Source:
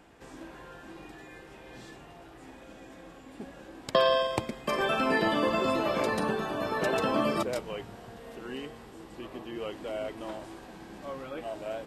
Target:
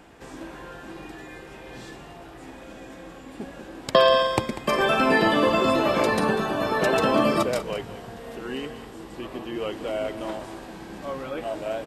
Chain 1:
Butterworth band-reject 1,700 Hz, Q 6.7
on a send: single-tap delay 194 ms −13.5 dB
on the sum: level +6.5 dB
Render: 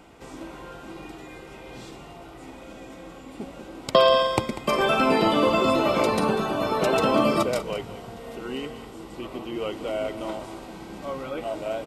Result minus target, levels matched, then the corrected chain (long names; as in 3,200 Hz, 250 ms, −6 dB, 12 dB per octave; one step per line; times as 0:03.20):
2,000 Hz band −3.0 dB
on a send: single-tap delay 194 ms −13.5 dB
on the sum: level +6.5 dB